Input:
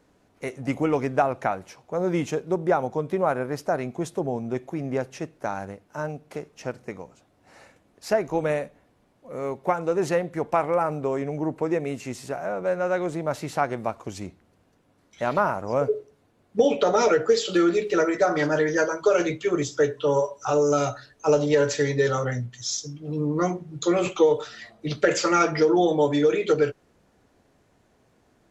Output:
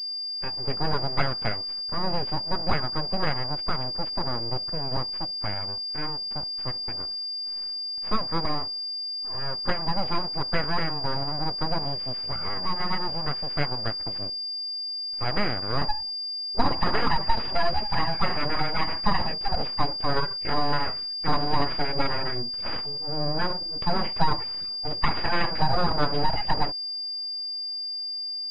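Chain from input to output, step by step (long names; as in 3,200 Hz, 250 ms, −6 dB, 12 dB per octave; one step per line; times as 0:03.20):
spectral magnitudes quantised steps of 30 dB
full-wave rectification
switching amplifier with a slow clock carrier 4,800 Hz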